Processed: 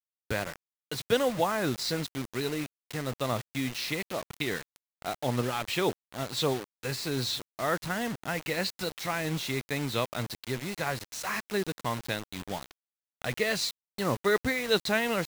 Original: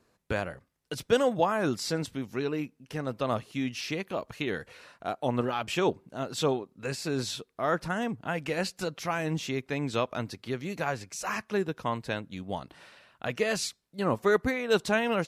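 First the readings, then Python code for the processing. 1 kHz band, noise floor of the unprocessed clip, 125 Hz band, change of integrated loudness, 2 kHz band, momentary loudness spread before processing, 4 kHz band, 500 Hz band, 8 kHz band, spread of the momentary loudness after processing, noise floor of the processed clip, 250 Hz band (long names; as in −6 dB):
−1.5 dB, −72 dBFS, +0.5 dB, −0.5 dB, +1.0 dB, 11 LU, +4.0 dB, −2.0 dB, +2.0 dB, 9 LU, below −85 dBFS, −1.5 dB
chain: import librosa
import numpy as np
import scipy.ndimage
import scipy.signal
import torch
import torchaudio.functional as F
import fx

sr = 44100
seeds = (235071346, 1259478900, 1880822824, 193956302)

y = fx.graphic_eq_31(x, sr, hz=(125, 2000, 4000, 12500), db=(5, 7, 10, -5))
y = fx.quant_dither(y, sr, seeds[0], bits=6, dither='none')
y = y * 10.0 ** (-2.0 / 20.0)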